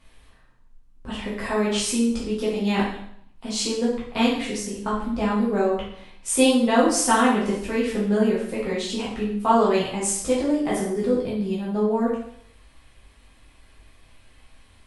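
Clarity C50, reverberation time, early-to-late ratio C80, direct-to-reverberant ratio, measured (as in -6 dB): 3.0 dB, 0.65 s, 7.0 dB, -7.0 dB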